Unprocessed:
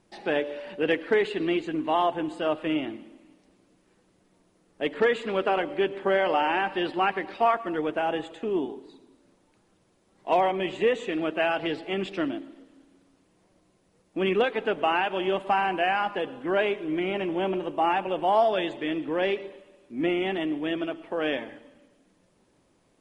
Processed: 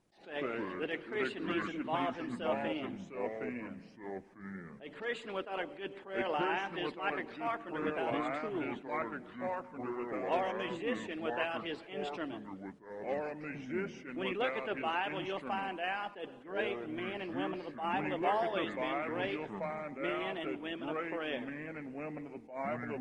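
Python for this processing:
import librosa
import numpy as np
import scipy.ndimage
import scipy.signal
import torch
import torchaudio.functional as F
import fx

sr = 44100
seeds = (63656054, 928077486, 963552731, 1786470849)

y = fx.hpss(x, sr, part='harmonic', gain_db=-7)
y = fx.echo_pitch(y, sr, ms=82, semitones=-4, count=2, db_per_echo=-3.0)
y = fx.attack_slew(y, sr, db_per_s=140.0)
y = y * 10.0 ** (-6.5 / 20.0)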